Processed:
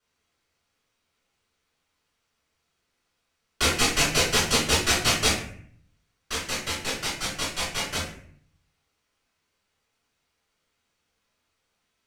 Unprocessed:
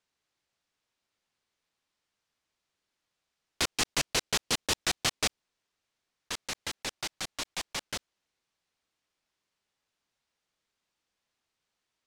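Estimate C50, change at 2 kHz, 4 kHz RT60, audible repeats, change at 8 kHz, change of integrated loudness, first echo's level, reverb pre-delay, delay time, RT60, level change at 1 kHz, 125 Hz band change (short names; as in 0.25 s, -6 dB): 3.5 dB, +8.5 dB, 0.40 s, none, +7.0 dB, +7.5 dB, none, 3 ms, none, 0.60 s, +8.5 dB, +12.0 dB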